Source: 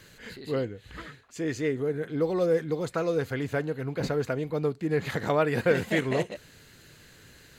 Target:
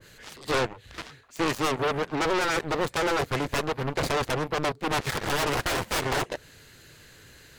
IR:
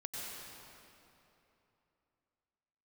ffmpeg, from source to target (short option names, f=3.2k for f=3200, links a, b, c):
-af "aeval=exprs='0.251*sin(PI/2*6.31*val(0)/0.251)':c=same,equalizer=f=200:w=1.5:g=-4.5,aeval=exprs='0.335*(cos(1*acos(clip(val(0)/0.335,-1,1)))-cos(1*PI/2))+0.133*(cos(3*acos(clip(val(0)/0.335,-1,1)))-cos(3*PI/2))':c=same,adynamicequalizer=threshold=0.0224:dfrequency=1600:dqfactor=0.7:tfrequency=1600:tqfactor=0.7:attack=5:release=100:ratio=0.375:range=3:mode=cutabove:tftype=highshelf,volume=-2.5dB"